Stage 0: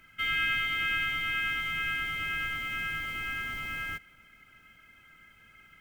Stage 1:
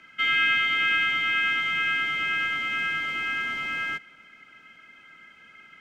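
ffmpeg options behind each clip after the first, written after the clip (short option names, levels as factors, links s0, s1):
-filter_complex "[0:a]acrossover=split=170 7100:gain=0.1 1 0.0794[s0][s1][s2];[s0][s1][s2]amix=inputs=3:normalize=0,volume=2.11"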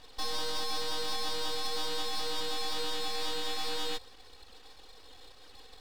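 -af "alimiter=limit=0.0708:level=0:latency=1:release=111,aeval=exprs='abs(val(0))':c=same"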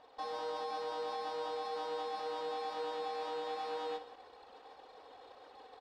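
-af "areverse,acompressor=mode=upward:threshold=0.0112:ratio=2.5,areverse,bandpass=f=700:t=q:w=1.5:csg=0,aecho=1:1:63|172:0.237|0.141,volume=1.41"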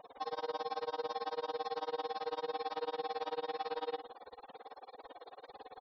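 -af "aeval=exprs='val(0)+0.5*0.00224*sgn(val(0))':c=same,tremolo=f=18:d=0.99,afftfilt=real='re*gte(hypot(re,im),0.00141)':imag='im*gte(hypot(re,im),0.00141)':win_size=1024:overlap=0.75,volume=1.5"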